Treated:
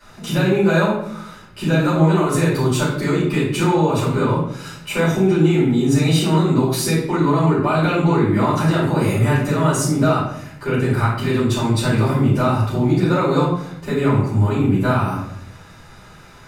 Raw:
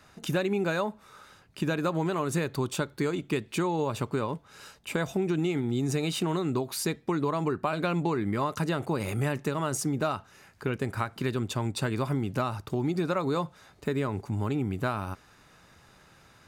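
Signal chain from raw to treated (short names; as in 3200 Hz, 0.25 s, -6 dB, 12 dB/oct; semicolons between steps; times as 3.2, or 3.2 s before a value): in parallel at -0.5 dB: limiter -24.5 dBFS, peak gain reduction 10.5 dB; on the sum: shoebox room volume 150 m³, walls mixed, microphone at 4.7 m; gain -7.5 dB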